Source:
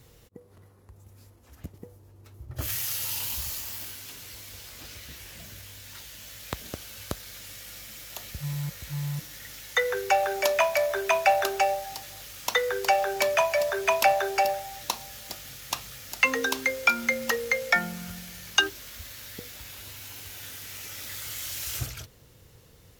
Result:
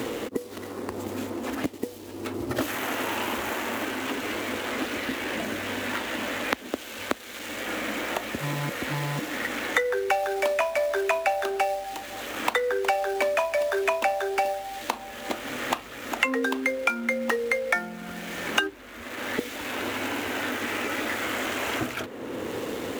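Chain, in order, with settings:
running median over 9 samples
low shelf with overshoot 200 Hz −8.5 dB, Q 3
multiband upward and downward compressor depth 100%
level +2 dB

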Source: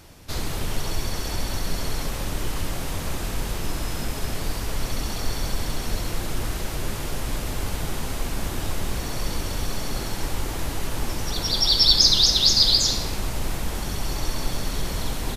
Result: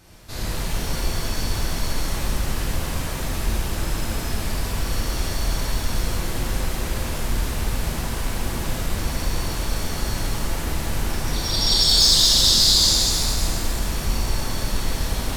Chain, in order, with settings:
gain into a clipping stage and back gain 10 dB
reverb with rising layers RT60 2.2 s, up +7 semitones, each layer −8 dB, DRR −6.5 dB
level −5.5 dB

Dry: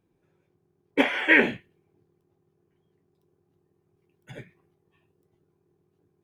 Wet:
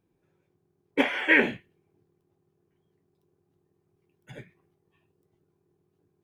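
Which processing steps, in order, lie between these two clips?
0:00.99–0:01.49: bit-depth reduction 12 bits, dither none
level −2 dB

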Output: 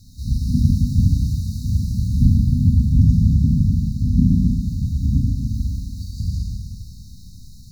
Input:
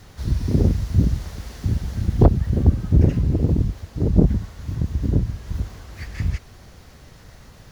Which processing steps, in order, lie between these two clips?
four-comb reverb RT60 2 s, combs from 29 ms, DRR −3 dB
brick-wall band-stop 270–3,700 Hz
level −1 dB

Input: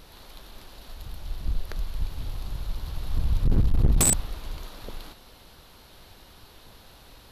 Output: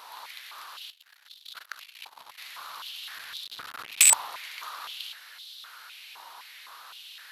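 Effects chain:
0:00.90–0:02.38: power curve on the samples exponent 2
high-pass on a step sequencer 3.9 Hz 960–3,600 Hz
level +3.5 dB

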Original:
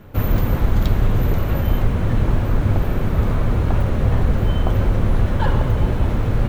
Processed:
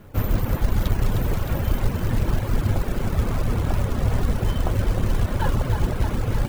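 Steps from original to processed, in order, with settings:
log-companded quantiser 6 bits
feedback echo with a high-pass in the loop 309 ms, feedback 72%, high-pass 410 Hz, level −6.5 dB
reverb reduction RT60 0.6 s
level −3 dB

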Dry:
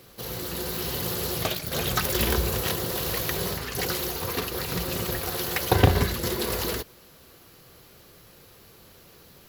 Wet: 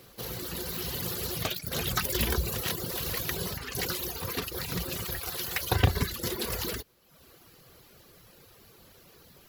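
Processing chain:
dynamic equaliser 650 Hz, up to −4 dB, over −38 dBFS, Q 0.71
reverb reduction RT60 0.8 s
0:04.95–0:05.89: parametric band 260 Hz −5.5 dB 2.2 octaves
level −1.5 dB

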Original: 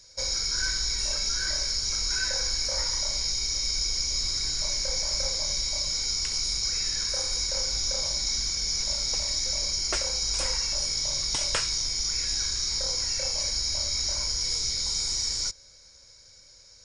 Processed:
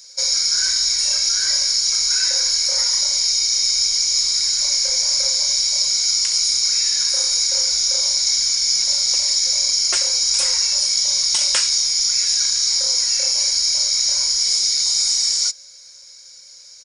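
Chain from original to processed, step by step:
spectral tilt +3.5 dB per octave
comb filter 5.6 ms, depth 40%
level +1.5 dB

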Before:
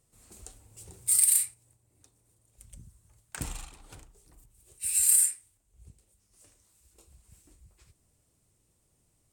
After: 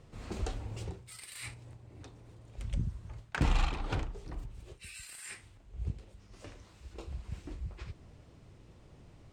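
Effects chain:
reversed playback
downward compressor 16 to 1, threshold −39 dBFS, peak gain reduction 22 dB
reversed playback
high-frequency loss of the air 230 metres
level +17.5 dB

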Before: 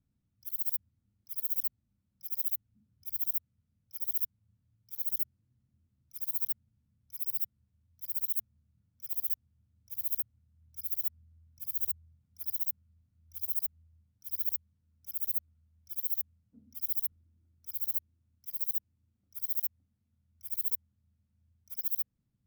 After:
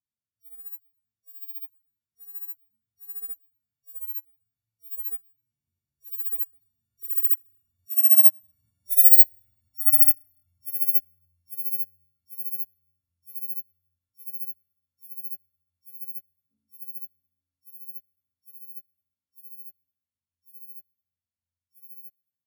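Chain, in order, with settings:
every partial snapped to a pitch grid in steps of 4 semitones
source passing by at 0:08.96, 5 m/s, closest 4 metres
high-pass filter 73 Hz
low-shelf EQ 110 Hz +5.5 dB
in parallel at −2 dB: output level in coarse steps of 12 dB
on the sum: delay with a low-pass on its return 172 ms, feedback 79%, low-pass 710 Hz, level −15 dB
on a send at −17 dB: convolution reverb RT60 1.9 s, pre-delay 3 ms
on the sum: expander for the loud parts 1.5 to 1, over −33 dBFS
level +4.5 dB

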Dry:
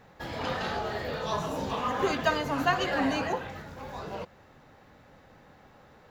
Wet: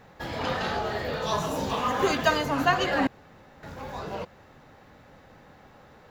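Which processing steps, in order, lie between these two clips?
0:01.22–0:02.46: high-shelf EQ 5,100 Hz +6 dB
0:03.07–0:03.63: fill with room tone
level +3 dB

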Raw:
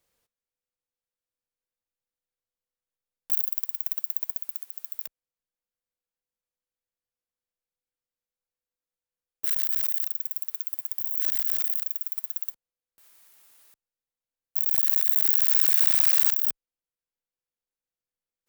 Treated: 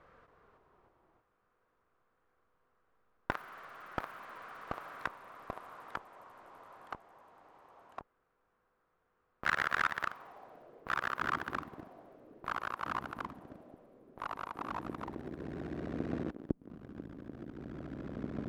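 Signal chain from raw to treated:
low-pass filter sweep 1,300 Hz → 310 Hz, 0:10.04–0:11.12
delay with pitch and tempo change per echo 278 ms, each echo −2 semitones, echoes 3
notch filter 870 Hz, Q 12
level +18 dB

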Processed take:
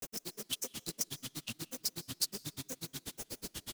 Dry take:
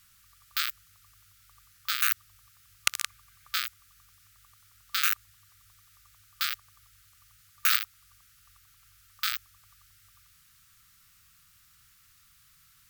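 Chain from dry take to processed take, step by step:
converter with a step at zero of −25.5 dBFS
repeating echo 257 ms, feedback 47%, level −14 dB
change of speed 3.45×
granular cloud 72 ms, grains 8.2 per second, spray 21 ms, pitch spread up and down by 7 semitones
on a send at −21.5 dB: convolution reverb RT60 1.0 s, pre-delay 100 ms
on the sum: level −2 dB

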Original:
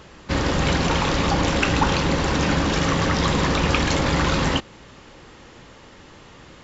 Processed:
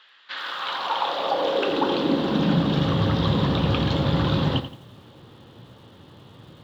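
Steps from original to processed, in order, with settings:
high-frequency loss of the air 490 metres
high-pass filter sweep 1,800 Hz → 110 Hz, 0:00.25–0:02.95
high shelf with overshoot 2,800 Hz +7.5 dB, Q 3
feedback echo at a low word length 86 ms, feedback 35%, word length 8 bits, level −11 dB
level −2 dB

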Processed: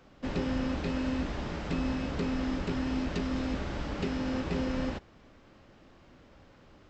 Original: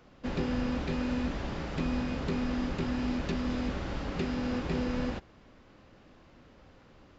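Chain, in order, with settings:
wrong playback speed 24 fps film run at 25 fps

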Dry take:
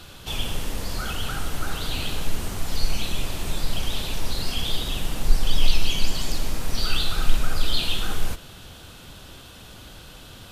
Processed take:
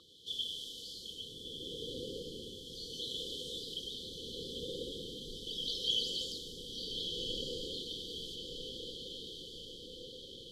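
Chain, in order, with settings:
linear-phase brick-wall band-stop 530–3,000 Hz
LFO wah 0.37 Hz 600–2,400 Hz, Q 6.2
feedback delay with all-pass diffusion 1,303 ms, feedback 56%, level −4.5 dB
level +12 dB

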